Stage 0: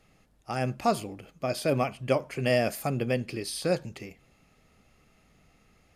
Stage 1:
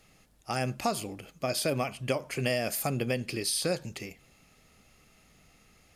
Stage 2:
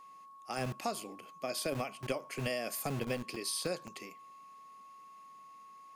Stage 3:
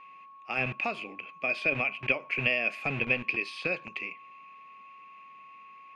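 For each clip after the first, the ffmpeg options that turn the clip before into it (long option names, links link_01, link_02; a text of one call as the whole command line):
ffmpeg -i in.wav -af "highshelf=frequency=2900:gain=8.5,acompressor=threshold=-25dB:ratio=6" out.wav
ffmpeg -i in.wav -filter_complex "[0:a]acrossover=split=170|1000[link_01][link_02][link_03];[link_01]acrusher=bits=5:mix=0:aa=0.000001[link_04];[link_04][link_02][link_03]amix=inputs=3:normalize=0,aeval=exprs='val(0)+0.00562*sin(2*PI*1100*n/s)':channel_layout=same,volume=-6.5dB" out.wav
ffmpeg -i in.wav -af "lowpass=frequency=2500:width_type=q:width=9.1,volume=1.5dB" out.wav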